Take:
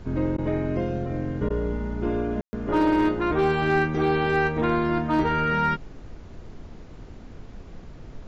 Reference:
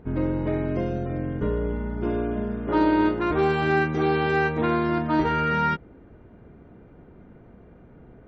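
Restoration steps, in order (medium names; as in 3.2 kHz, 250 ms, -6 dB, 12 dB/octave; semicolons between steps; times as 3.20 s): clip repair -14 dBFS; room tone fill 2.41–2.53 s; interpolate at 0.37/1.49 s, 11 ms; noise print and reduce 7 dB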